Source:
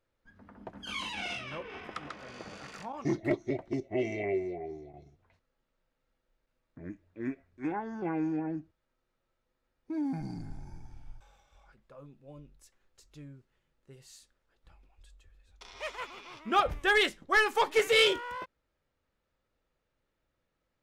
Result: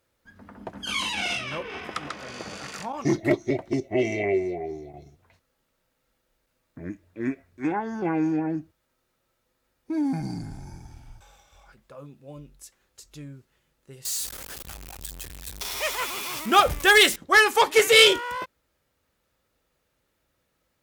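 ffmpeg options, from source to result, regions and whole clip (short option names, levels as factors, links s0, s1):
-filter_complex "[0:a]asettb=1/sr,asplit=3[s0][s1][s2];[s0]atrim=end=14.054[s3];[s1]atrim=start=14.05:end=17.16,asetpts=PTS-STARTPTS,afade=t=in:d=0.004:c=qsin,afade=t=out:st=3.106:d=0.004:c=qsin,aeval=exprs='val(0)+0.5*0.00668*sgn(val(0))':c=same,highshelf=f=6400:g=6.5[s4];[s2]atrim=start=17.156[s5];[s3][s4]acrossfade=d=0.004:c1=hsin:c2=qsin[s6];[s6][s5]acrossfade=d=0.004:c1=qsin:c2=hsin,highpass=42,aemphasis=mode=production:type=cd,volume=2.37"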